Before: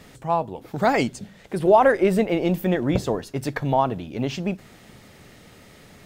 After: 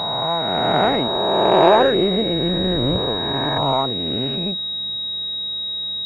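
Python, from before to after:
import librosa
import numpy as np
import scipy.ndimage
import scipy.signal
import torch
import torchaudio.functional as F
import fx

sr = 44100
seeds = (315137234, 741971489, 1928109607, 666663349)

y = fx.spec_swells(x, sr, rise_s=2.6)
y = fx.air_absorb(y, sr, metres=220.0, at=(2.58, 2.98))
y = fx.pwm(y, sr, carrier_hz=3800.0)
y = y * librosa.db_to_amplitude(-2.5)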